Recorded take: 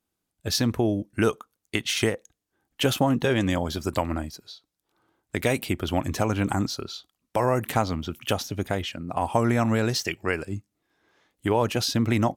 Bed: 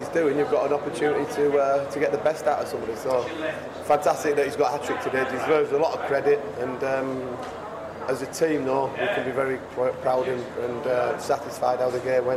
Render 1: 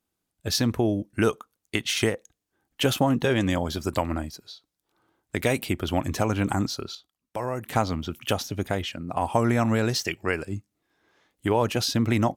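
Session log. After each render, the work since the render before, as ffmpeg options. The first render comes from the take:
-filter_complex "[0:a]asplit=3[s0][s1][s2];[s0]atrim=end=6.952[s3];[s1]atrim=start=6.948:end=7.722,asetpts=PTS-STARTPTS,volume=0.447[s4];[s2]atrim=start=7.718[s5];[s3][s4]acrossfade=d=0.004:c1=hsin:c2=hsin[s6];[s6][s5]acrossfade=d=0.004:c1=hsin:c2=hsin"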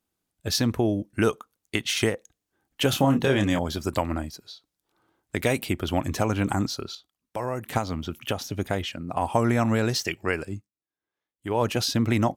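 -filter_complex "[0:a]asettb=1/sr,asplit=3[s0][s1][s2];[s0]atrim=end=2.904[s3];[s1]atrim=start=2.9:end=3.59,asetpts=PTS-STARTPTS,afade=t=in:d=0.004:c=qsin,afade=t=out:st=0.686:d=0.004:c=qsin,asplit=2[s4][s5];[s5]adelay=29,volume=0.501[s6];[s4][s6]amix=inputs=2:normalize=0,atrim=end_sample=30429[s7];[s2]atrim=start=3.586[s8];[s3][s7]acrossfade=d=0.004:c1=hsin:c2=qsin[s9];[s9][s8]acrossfade=d=0.004:c1=qsin:c2=hsin,asettb=1/sr,asplit=3[s10][s11][s12];[s10]atrim=end=7.774[s13];[s11]atrim=start=7.77:end=8.42,asetpts=PTS-STARTPTS,afade=t=in:d=0.004:c=qsin,afade=t=out:st=0.646:d=0.004:c=qsin,acrossover=split=3200|7400[s14][s15][s16];[s14]acompressor=threshold=0.0708:ratio=4[s17];[s15]acompressor=threshold=0.00708:ratio=4[s18];[s16]acompressor=threshold=0.00447:ratio=4[s19];[s17][s18][s19]amix=inputs=3:normalize=0[s20];[s12]atrim=start=8.416[s21];[s13][s20]acrossfade=d=0.004:c1=hsin:c2=qsin[s22];[s22][s21]acrossfade=d=0.004:c1=qsin:c2=hsin,asplit=3[s23][s24][s25];[s23]atrim=end=10.71,asetpts=PTS-STARTPTS,afade=t=out:st=10.48:d=0.23:silence=0.0630957[s26];[s24]atrim=start=10.71:end=11.39,asetpts=PTS-STARTPTS,volume=0.0631[s27];[s25]atrim=start=11.39,asetpts=PTS-STARTPTS,afade=t=in:d=0.23:silence=0.0630957[s28];[s26][s27][s28]concat=n=3:v=0:a=1"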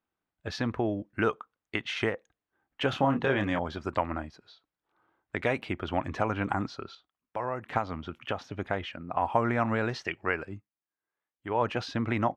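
-af "lowpass=1400,tiltshelf=f=900:g=-8"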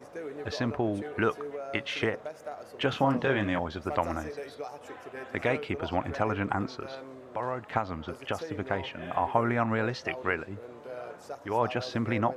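-filter_complex "[1:a]volume=0.141[s0];[0:a][s0]amix=inputs=2:normalize=0"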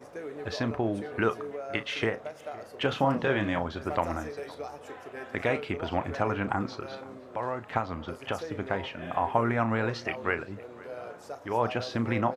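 -filter_complex "[0:a]asplit=2[s0][s1];[s1]adelay=35,volume=0.224[s2];[s0][s2]amix=inputs=2:normalize=0,asplit=2[s3][s4];[s4]adelay=513.1,volume=0.1,highshelf=f=4000:g=-11.5[s5];[s3][s5]amix=inputs=2:normalize=0"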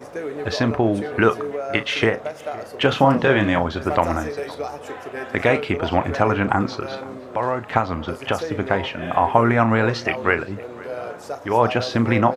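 -af "volume=3.16,alimiter=limit=0.891:level=0:latency=1"

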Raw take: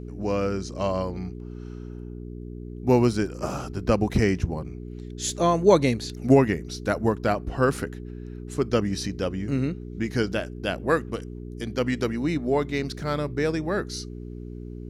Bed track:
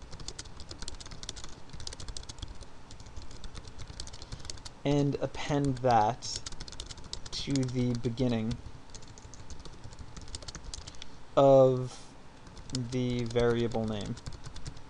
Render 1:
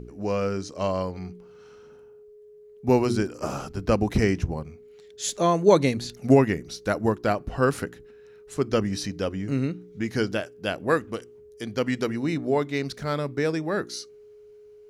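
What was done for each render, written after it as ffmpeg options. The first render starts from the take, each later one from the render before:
-af "bandreject=f=60:t=h:w=4,bandreject=f=120:t=h:w=4,bandreject=f=180:t=h:w=4,bandreject=f=240:t=h:w=4,bandreject=f=300:t=h:w=4,bandreject=f=360:t=h:w=4"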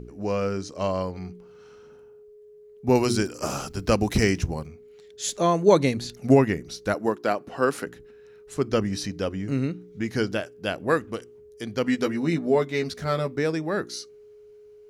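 -filter_complex "[0:a]asettb=1/sr,asplit=3[s0][s1][s2];[s0]atrim=end=2.954[s3];[s1]atrim=start=2.95:end=4.67,asetpts=PTS-STARTPTS,afade=t=in:d=0.004:c=qsin,afade=t=out:st=1.716:d=0.004:c=qsin,highshelf=f=2800:g=10[s4];[s2]atrim=start=4.666[s5];[s3][s4]acrossfade=d=0.004:c1=hsin:c2=qsin[s6];[s6][s5]acrossfade=d=0.004:c1=qsin:c2=hsin,asettb=1/sr,asplit=3[s7][s8][s9];[s7]atrim=end=6.944[s10];[s8]atrim=start=6.94:end=7.87,asetpts=PTS-STARTPTS,afade=t=in:d=0.004:c=qsin,afade=t=out:st=0.926:d=0.004:c=qsin,highpass=240[s11];[s9]atrim=start=7.866[s12];[s10][s11]acrossfade=d=0.004:c1=hsin:c2=qsin[s13];[s13][s12]acrossfade=d=0.004:c1=qsin:c2=hsin,asettb=1/sr,asplit=3[s14][s15][s16];[s14]atrim=end=11.834[s17];[s15]atrim=start=11.83:end=13.36,asetpts=PTS-STARTPTS,afade=t=in:d=0.004:c=qsin,afade=t=out:st=1.526:d=0.004:c=qsin,asplit=2[s18][s19];[s19]adelay=12,volume=0.596[s20];[s18][s20]amix=inputs=2:normalize=0,atrim=end_sample=67473[s21];[s16]atrim=start=13.356[s22];[s17][s21]acrossfade=d=0.004:c1=hsin:c2=qsin[s23];[s23][s22]acrossfade=d=0.004:c1=qsin:c2=hsin"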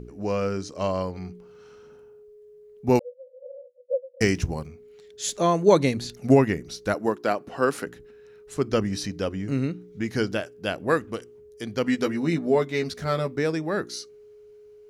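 -filter_complex "[0:a]asettb=1/sr,asplit=3[s0][s1][s2];[s0]atrim=end=2.994[s3];[s1]atrim=start=2.99:end=4.21,asetpts=PTS-STARTPTS,afade=t=in:d=0.004:c=qsin,afade=t=out:st=1.216:d=0.004:c=qsin,asuperpass=centerf=530:order=12:qfactor=6.2[s4];[s2]atrim=start=4.206[s5];[s3][s4]acrossfade=d=0.004:c1=hsin:c2=qsin[s6];[s6][s5]acrossfade=d=0.004:c1=qsin:c2=hsin"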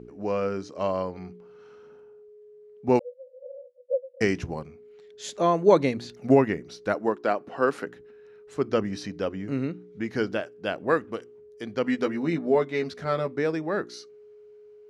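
-af "highpass=f=250:p=1,aemphasis=mode=reproduction:type=75fm"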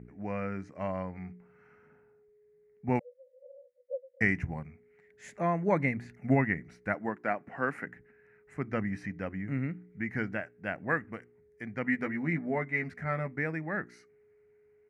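-af "firequalizer=gain_entry='entry(160,0);entry(410,-14);entry(740,-5);entry(1100,-9);entry(2000,6);entry(3400,-25);entry(8100,-11)':delay=0.05:min_phase=1"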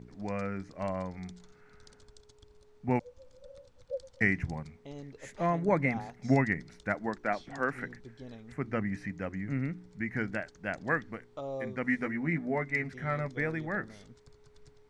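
-filter_complex "[1:a]volume=0.133[s0];[0:a][s0]amix=inputs=2:normalize=0"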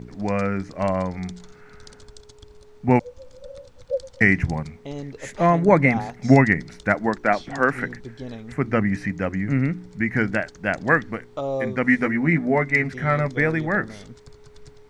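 -af "volume=3.76,alimiter=limit=0.708:level=0:latency=1"

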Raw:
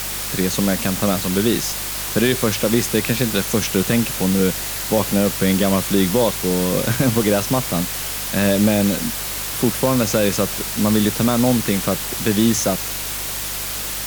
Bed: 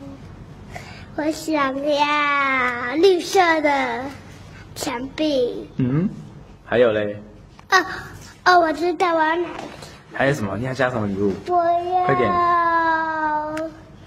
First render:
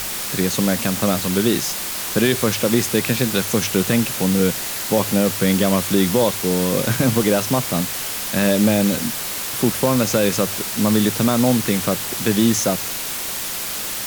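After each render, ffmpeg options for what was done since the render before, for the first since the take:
-af "bandreject=f=50:t=h:w=4,bandreject=f=100:t=h:w=4,bandreject=f=150:t=h:w=4"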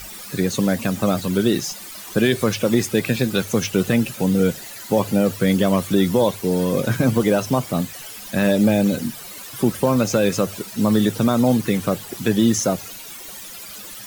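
-af "afftdn=nr=14:nf=-27"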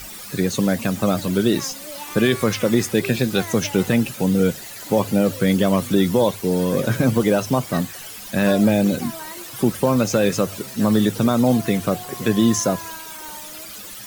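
-filter_complex "[1:a]volume=0.119[s0];[0:a][s0]amix=inputs=2:normalize=0"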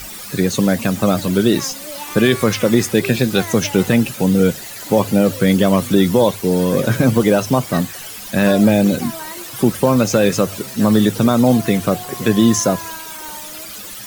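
-af "volume=1.58,alimiter=limit=0.794:level=0:latency=1"

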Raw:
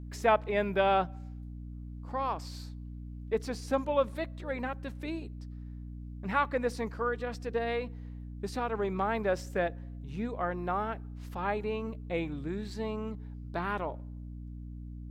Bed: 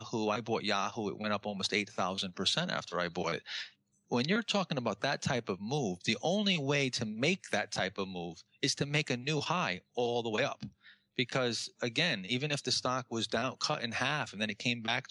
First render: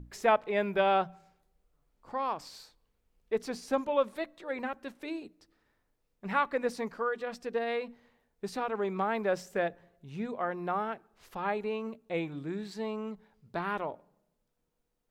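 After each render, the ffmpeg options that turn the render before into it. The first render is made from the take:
-af "bandreject=f=60:t=h:w=6,bandreject=f=120:t=h:w=6,bandreject=f=180:t=h:w=6,bandreject=f=240:t=h:w=6,bandreject=f=300:t=h:w=6"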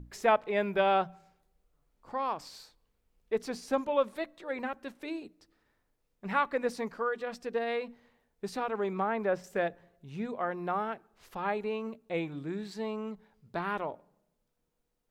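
-filter_complex "[0:a]asettb=1/sr,asplit=3[s0][s1][s2];[s0]atrim=end=8.934[s3];[s1]atrim=start=8.93:end=9.44,asetpts=PTS-STARTPTS,afade=t=in:d=0.004:c=qsin,afade=t=out:st=0.506:d=0.004:c=qsin,acrossover=split=2600[s4][s5];[s5]acompressor=threshold=0.00126:ratio=4:attack=1:release=60[s6];[s4][s6]amix=inputs=2:normalize=0[s7];[s2]atrim=start=9.436[s8];[s3][s7]acrossfade=d=0.004:c1=hsin:c2=qsin[s9];[s9][s8]acrossfade=d=0.004:c1=qsin:c2=hsin"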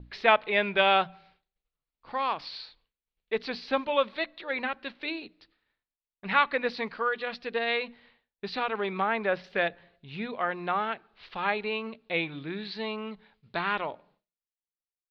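-af "firequalizer=gain_entry='entry(360,0);entry(2400,12);entry(4200,13);entry(7300,-30)':delay=0.05:min_phase=1,agate=range=0.0224:threshold=0.00126:ratio=3:detection=peak"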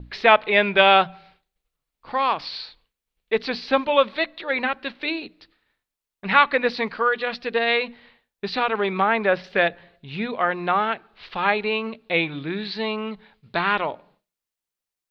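-af "volume=2.37,alimiter=limit=0.891:level=0:latency=1"

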